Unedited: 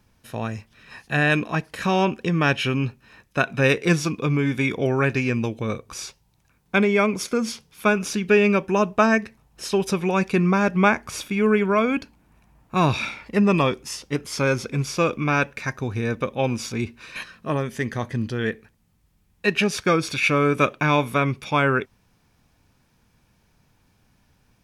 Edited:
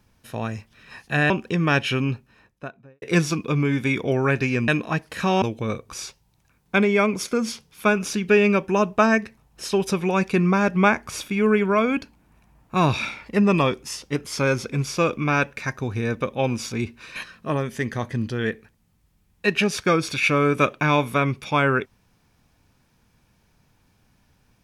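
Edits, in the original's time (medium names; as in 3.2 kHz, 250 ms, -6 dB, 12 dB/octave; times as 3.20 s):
1.30–2.04 s: move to 5.42 s
2.70–3.76 s: studio fade out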